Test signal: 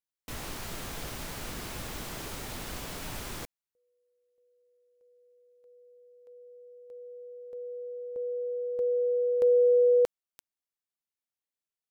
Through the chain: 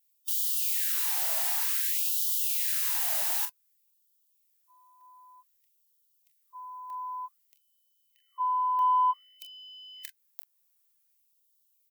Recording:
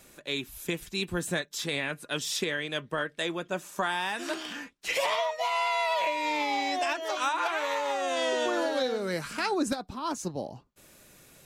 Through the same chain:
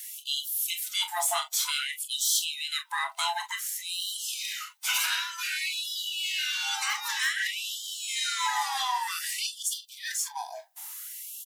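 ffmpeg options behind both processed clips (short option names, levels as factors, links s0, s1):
-filter_complex "[0:a]afftfilt=real='real(if(lt(b,1008),b+24*(1-2*mod(floor(b/24),2)),b),0)':imag='imag(if(lt(b,1008),b+24*(1-2*mod(floor(b/24),2)),b),0)':win_size=2048:overlap=0.75,highpass=f=210:w=0.5412,highpass=f=210:w=1.3066,aemphasis=mode=production:type=50fm,bandreject=f=60:t=h:w=6,bandreject=f=120:t=h:w=6,bandreject=f=180:t=h:w=6,bandreject=f=240:t=h:w=6,bandreject=f=300:t=h:w=6,asplit=2[s0][s1];[s1]acompressor=threshold=0.0158:ratio=8:attack=0.3:release=319:knee=6:detection=peak,volume=1.06[s2];[s0][s2]amix=inputs=2:normalize=0,aeval=exprs='val(0)+0.00126*(sin(2*PI*50*n/s)+sin(2*PI*2*50*n/s)/2+sin(2*PI*3*50*n/s)/3+sin(2*PI*4*50*n/s)/4+sin(2*PI*5*50*n/s)/5)':c=same,asoftclip=type=tanh:threshold=0.141,asplit=2[s3][s4];[s4]aecho=0:1:28|42:0.299|0.266[s5];[s3][s5]amix=inputs=2:normalize=0,afftfilt=real='re*gte(b*sr/1024,600*pow(2900/600,0.5+0.5*sin(2*PI*0.54*pts/sr)))':imag='im*gte(b*sr/1024,600*pow(2900/600,0.5+0.5*sin(2*PI*0.54*pts/sr)))':win_size=1024:overlap=0.75"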